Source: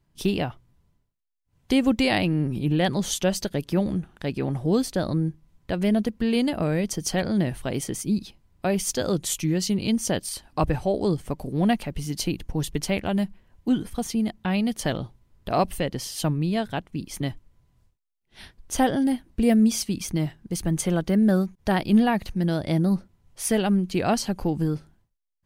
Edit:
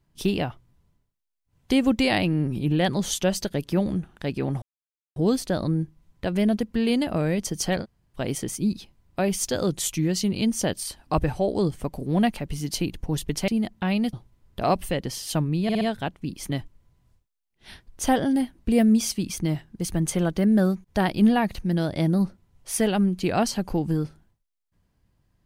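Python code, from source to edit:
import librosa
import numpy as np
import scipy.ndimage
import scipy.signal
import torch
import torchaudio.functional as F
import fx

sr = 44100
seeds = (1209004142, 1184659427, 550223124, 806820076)

y = fx.edit(x, sr, fx.insert_silence(at_s=4.62, length_s=0.54),
    fx.room_tone_fill(start_s=7.29, length_s=0.34, crossfade_s=0.06),
    fx.cut(start_s=12.94, length_s=1.17),
    fx.cut(start_s=14.76, length_s=0.26),
    fx.stutter(start_s=16.52, slice_s=0.06, count=4), tone=tone)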